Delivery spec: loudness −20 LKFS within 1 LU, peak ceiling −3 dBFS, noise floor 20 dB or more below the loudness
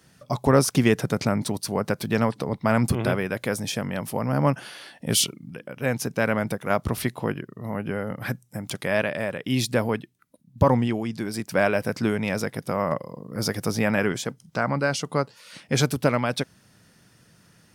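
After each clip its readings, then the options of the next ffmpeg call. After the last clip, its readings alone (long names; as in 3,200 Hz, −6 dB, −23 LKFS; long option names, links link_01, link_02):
integrated loudness −25.5 LKFS; sample peak −5.5 dBFS; target loudness −20.0 LKFS
→ -af "volume=5.5dB,alimiter=limit=-3dB:level=0:latency=1"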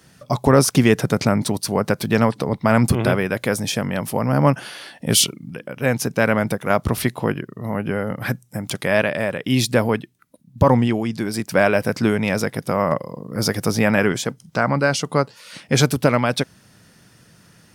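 integrated loudness −20.0 LKFS; sample peak −3.0 dBFS; background noise floor −54 dBFS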